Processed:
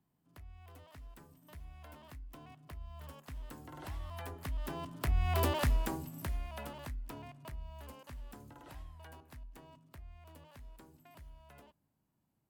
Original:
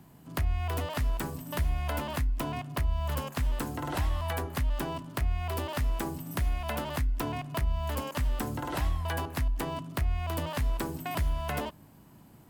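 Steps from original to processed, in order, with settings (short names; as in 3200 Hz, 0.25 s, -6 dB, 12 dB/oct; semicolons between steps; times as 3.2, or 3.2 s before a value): Doppler pass-by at 5.45, 9 m/s, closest 2.2 m; gain +2.5 dB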